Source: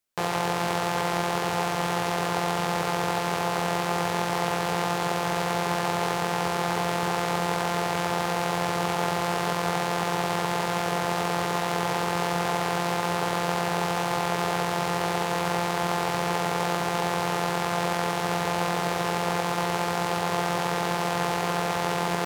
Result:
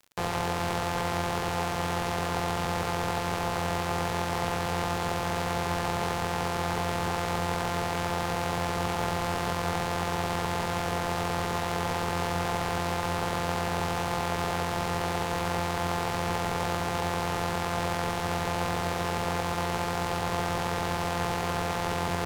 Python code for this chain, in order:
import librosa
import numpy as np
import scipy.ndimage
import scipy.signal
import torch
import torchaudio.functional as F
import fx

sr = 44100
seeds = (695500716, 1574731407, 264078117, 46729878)

y = fx.octave_divider(x, sr, octaves=1, level_db=-1.0)
y = fx.dmg_crackle(y, sr, seeds[0], per_s=63.0, level_db=-35.0)
y = y * librosa.db_to_amplitude(-3.5)